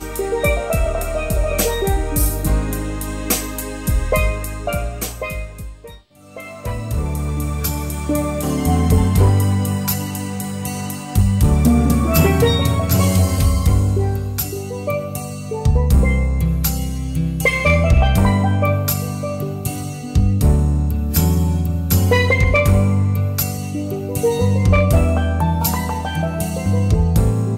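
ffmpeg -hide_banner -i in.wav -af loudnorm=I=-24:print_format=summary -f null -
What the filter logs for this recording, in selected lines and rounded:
Input Integrated:    -18.2 LUFS
Input True Peak:      -4.0 dBTP
Input LRA:             4.9 LU
Input Threshold:     -28.3 LUFS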